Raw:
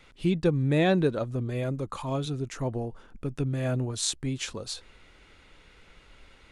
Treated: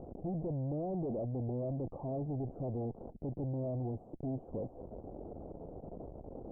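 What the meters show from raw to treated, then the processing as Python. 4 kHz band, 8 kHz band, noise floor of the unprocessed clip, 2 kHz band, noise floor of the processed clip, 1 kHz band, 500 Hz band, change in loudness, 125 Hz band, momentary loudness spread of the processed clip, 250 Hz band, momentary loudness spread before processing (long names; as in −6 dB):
below −40 dB, below −40 dB, −56 dBFS, below −40 dB, −54 dBFS, −10.0 dB, −9.0 dB, −10.5 dB, −8.5 dB, 11 LU, −9.0 dB, 13 LU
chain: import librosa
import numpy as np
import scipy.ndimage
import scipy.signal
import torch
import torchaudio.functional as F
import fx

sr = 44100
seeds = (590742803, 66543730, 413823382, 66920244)

y = x + 0.5 * 10.0 ** (-33.5 / 20.0) * np.sign(x)
y = fx.highpass(y, sr, hz=150.0, slope=6)
y = fx.tube_stage(y, sr, drive_db=39.0, bias=0.55)
y = scipy.signal.sosfilt(scipy.signal.ellip(4, 1.0, 60, 720.0, 'lowpass', fs=sr, output='sos'), y)
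y = y * 10.0 ** (5.0 / 20.0)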